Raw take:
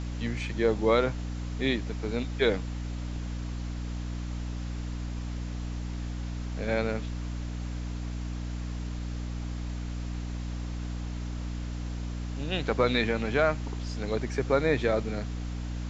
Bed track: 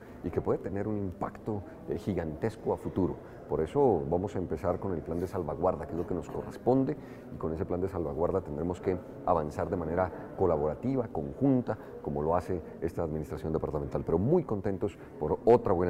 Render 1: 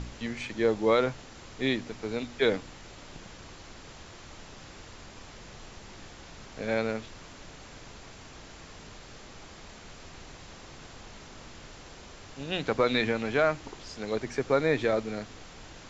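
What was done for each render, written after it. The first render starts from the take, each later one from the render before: de-hum 60 Hz, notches 5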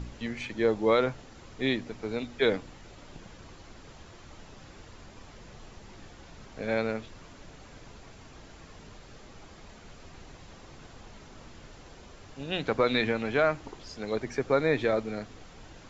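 denoiser 6 dB, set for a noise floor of -48 dBFS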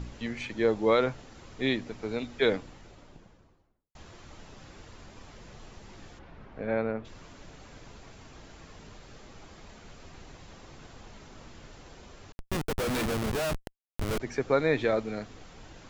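2.46–3.95 studio fade out; 6.18–7.04 LPF 2500 Hz -> 1400 Hz; 12.32–14.2 Schmitt trigger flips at -31 dBFS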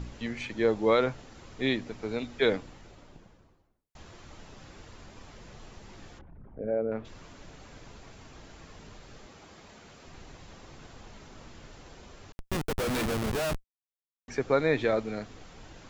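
6.21–6.92 formant sharpening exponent 2; 9.26–10.07 HPF 130 Hz 6 dB/oct; 13.64–14.28 mute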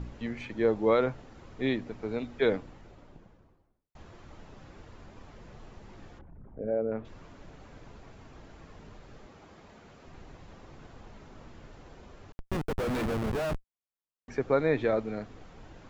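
high shelf 2800 Hz -11.5 dB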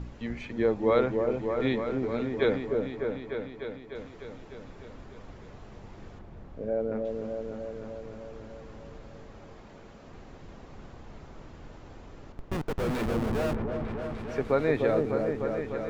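repeats that get brighter 0.3 s, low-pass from 750 Hz, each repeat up 1 oct, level -3 dB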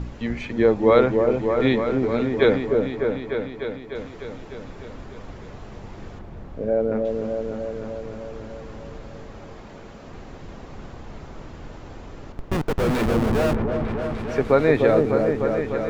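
gain +8 dB

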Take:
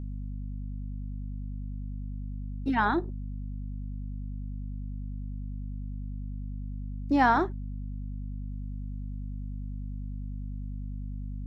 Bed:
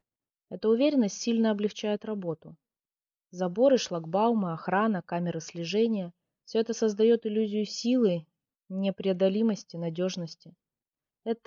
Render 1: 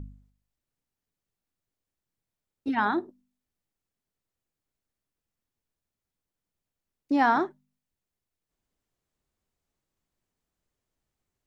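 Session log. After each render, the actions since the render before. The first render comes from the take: de-hum 50 Hz, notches 5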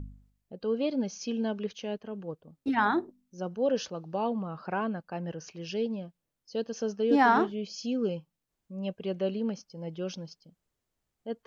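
add bed -5.5 dB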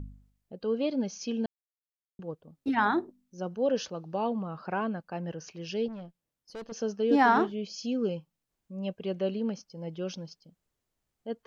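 1.46–2.19 mute; 5.88–6.72 tube stage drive 37 dB, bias 0.5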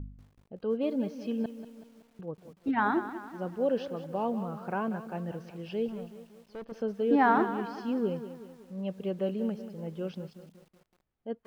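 air absorption 330 m; lo-fi delay 0.188 s, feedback 55%, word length 9-bit, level -12 dB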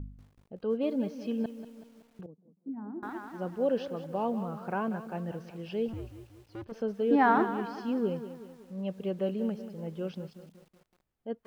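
2.26–3.03 ladder band-pass 240 Hz, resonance 45%; 5.93–6.67 frequency shift -110 Hz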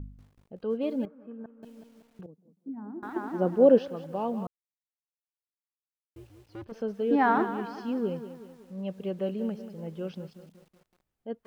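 1.05–1.63 ladder low-pass 1500 Hz, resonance 65%; 3.16–3.79 bell 370 Hz +11 dB 3 oct; 4.47–6.16 mute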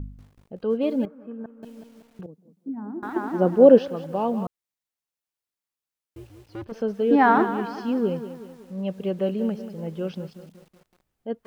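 gain +6 dB

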